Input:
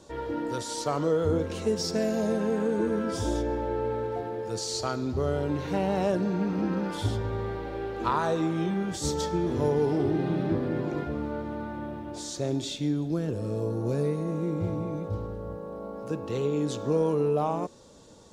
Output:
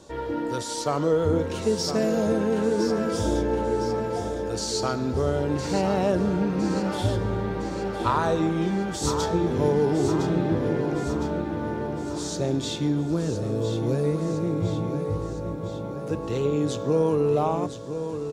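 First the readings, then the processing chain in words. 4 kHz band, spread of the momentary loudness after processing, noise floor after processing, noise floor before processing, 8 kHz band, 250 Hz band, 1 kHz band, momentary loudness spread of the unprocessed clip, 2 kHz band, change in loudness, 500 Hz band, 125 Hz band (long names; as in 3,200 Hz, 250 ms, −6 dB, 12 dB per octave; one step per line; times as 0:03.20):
+3.5 dB, 7 LU, −32 dBFS, −39 dBFS, +3.5 dB, +3.5 dB, +3.5 dB, 9 LU, +4.0 dB, +3.5 dB, +3.5 dB, +4.0 dB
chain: repeating echo 1,010 ms, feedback 57%, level −9 dB
level +3 dB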